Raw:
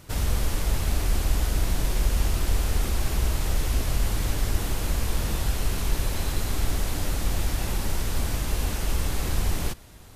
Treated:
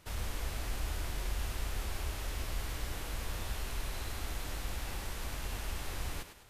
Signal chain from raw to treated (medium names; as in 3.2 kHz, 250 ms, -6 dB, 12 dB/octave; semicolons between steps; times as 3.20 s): peaking EQ 340 Hz -5 dB 2.6 oct; thinning echo 161 ms, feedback 44%, high-pass 180 Hz, level -9 dB; time stretch by phase-locked vocoder 0.64×; tone controls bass -6 dB, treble -5 dB; trim -5.5 dB